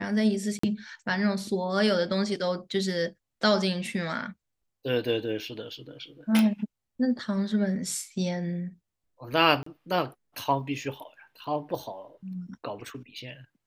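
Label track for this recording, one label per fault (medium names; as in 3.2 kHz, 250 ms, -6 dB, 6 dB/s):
0.590000	0.630000	dropout 44 ms
6.390000	6.390000	pop
9.630000	9.660000	dropout 34 ms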